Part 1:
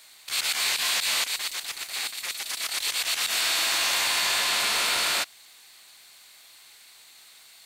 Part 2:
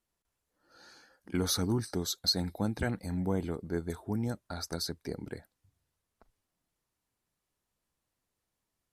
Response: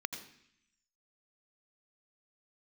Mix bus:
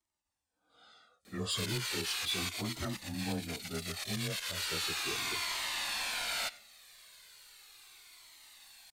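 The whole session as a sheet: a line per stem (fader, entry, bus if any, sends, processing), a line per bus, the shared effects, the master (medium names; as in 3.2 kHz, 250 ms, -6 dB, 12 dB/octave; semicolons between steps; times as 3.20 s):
-1.5 dB, 1.25 s, send -18 dB, auto duck -8 dB, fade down 1.70 s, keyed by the second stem
+3.0 dB, 0.00 s, no send, frequency axis rescaled in octaves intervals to 92%; high-pass 230 Hz 6 dB/octave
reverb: on, RT60 0.70 s, pre-delay 77 ms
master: bass shelf 70 Hz +11 dB; hard clipper -23.5 dBFS, distortion -21 dB; Shepard-style flanger falling 0.36 Hz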